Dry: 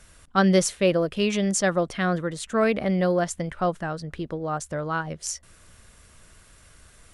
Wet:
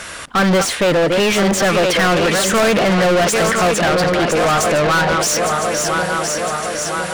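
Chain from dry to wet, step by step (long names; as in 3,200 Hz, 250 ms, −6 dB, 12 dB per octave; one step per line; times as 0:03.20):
feedback delay that plays each chunk backwards 505 ms, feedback 69%, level −11.5 dB
mid-hump overdrive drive 36 dB, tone 3,300 Hz, clips at −7.5 dBFS, from 0:01.73 tone 5,800 Hz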